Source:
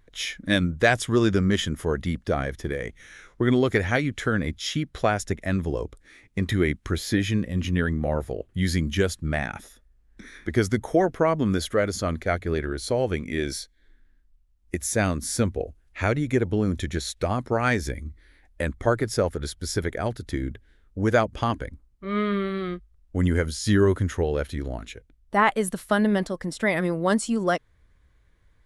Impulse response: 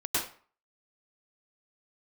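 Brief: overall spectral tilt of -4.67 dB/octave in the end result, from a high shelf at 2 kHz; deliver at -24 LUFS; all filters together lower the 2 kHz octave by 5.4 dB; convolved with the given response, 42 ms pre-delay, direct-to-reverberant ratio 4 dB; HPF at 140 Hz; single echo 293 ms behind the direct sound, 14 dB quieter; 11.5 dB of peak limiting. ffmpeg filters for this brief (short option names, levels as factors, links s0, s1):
-filter_complex "[0:a]highpass=140,highshelf=f=2000:g=3.5,equalizer=f=2000:t=o:g=-9,alimiter=limit=0.141:level=0:latency=1,aecho=1:1:293:0.2,asplit=2[s0][s1];[1:a]atrim=start_sample=2205,adelay=42[s2];[s1][s2]afir=irnorm=-1:irlink=0,volume=0.237[s3];[s0][s3]amix=inputs=2:normalize=0,volume=1.58"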